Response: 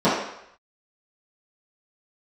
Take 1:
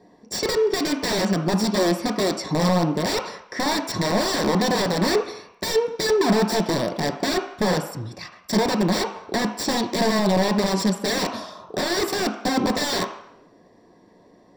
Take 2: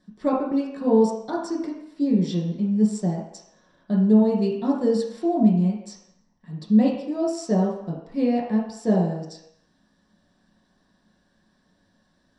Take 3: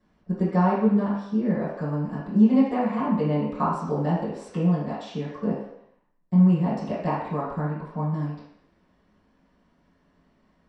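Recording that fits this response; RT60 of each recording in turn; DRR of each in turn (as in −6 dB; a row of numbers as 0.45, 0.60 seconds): 3; 0.75, 0.75, 0.75 seconds; 4.5, −4.5, −14.5 decibels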